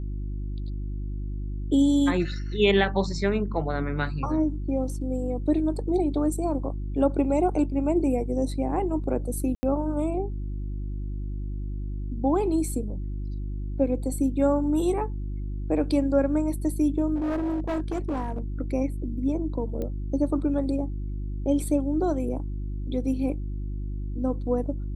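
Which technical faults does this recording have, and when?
hum 50 Hz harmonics 7 -31 dBFS
9.55–9.63 s: dropout 80 ms
17.15–18.40 s: clipped -24 dBFS
19.82 s: pop -21 dBFS

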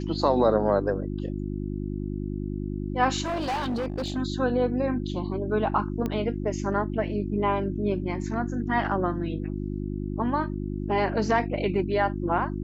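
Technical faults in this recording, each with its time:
hum 50 Hz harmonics 7 -31 dBFS
3.24–4.18 s: clipped -25 dBFS
6.06 s: pop -17 dBFS

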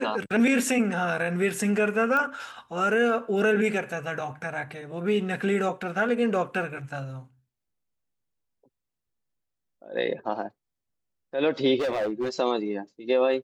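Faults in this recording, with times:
2.17 s: pop -16 dBFS
11.79–12.29 s: clipped -23.5 dBFS

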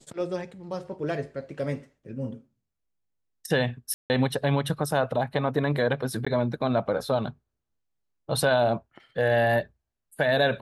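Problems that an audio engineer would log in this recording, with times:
3.94–4.10 s: dropout 159 ms
6.25–6.26 s: dropout 15 ms

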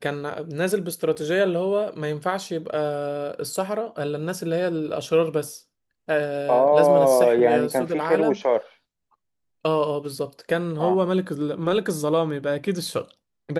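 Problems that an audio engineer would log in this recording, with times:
1.15–1.16 s: dropout 5.8 ms

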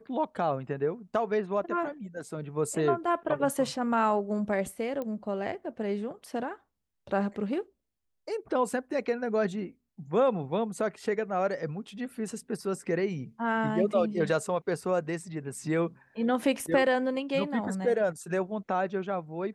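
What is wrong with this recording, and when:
5.02 s: pop -23 dBFS

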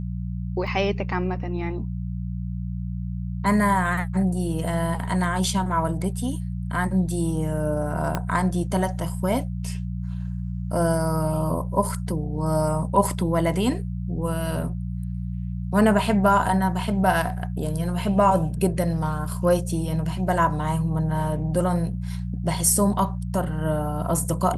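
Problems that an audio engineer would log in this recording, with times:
hum 60 Hz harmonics 3 -29 dBFS
0.67 s: dropout 2.7 ms
8.15 s: pop -10 dBFS

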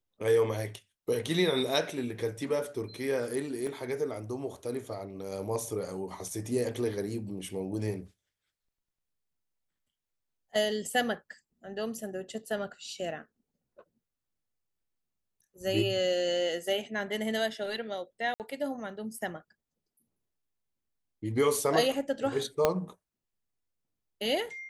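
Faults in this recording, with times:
3.67 s: dropout 2.4 ms
18.34–18.40 s: dropout 58 ms
22.65 s: pop -10 dBFS

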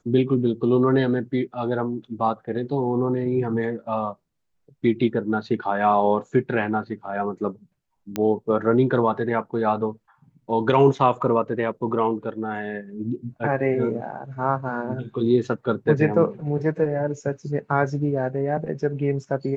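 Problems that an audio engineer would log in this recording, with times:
8.16 s: pop -11 dBFS

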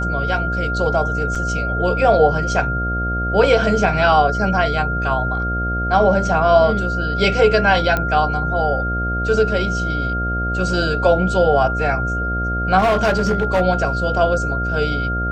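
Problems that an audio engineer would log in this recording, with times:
buzz 60 Hz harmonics 12 -23 dBFS
whine 1.4 kHz -22 dBFS
1.35–1.36 s: dropout 5.1 ms
7.97 s: pop -7 dBFS
12.78–13.62 s: clipped -12 dBFS

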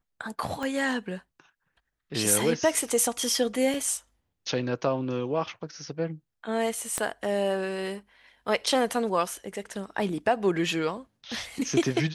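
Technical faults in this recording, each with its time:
0.63 s: pop -20 dBFS
3.74 s: dropout 2.2 ms
6.98 s: pop -13 dBFS

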